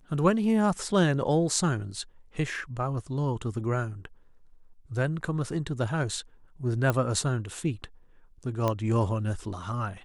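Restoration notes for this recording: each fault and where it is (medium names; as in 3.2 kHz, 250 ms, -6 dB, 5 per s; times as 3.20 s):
6.90 s: pop -13 dBFS
8.68 s: pop -14 dBFS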